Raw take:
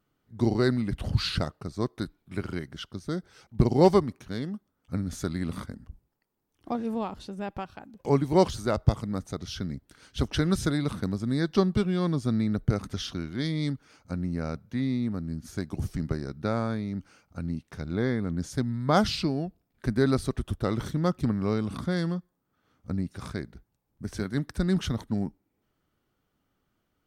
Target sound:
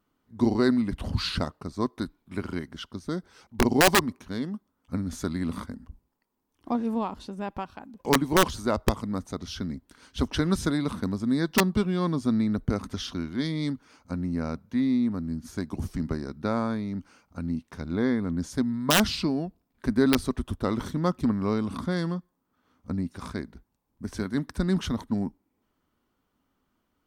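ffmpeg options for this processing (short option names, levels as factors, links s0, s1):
-af "equalizer=f=125:t=o:w=0.33:g=-9,equalizer=f=250:t=o:w=0.33:g=6,equalizer=f=1000:t=o:w=0.33:g=7,aeval=exprs='(mod(3.55*val(0)+1,2)-1)/3.55':c=same"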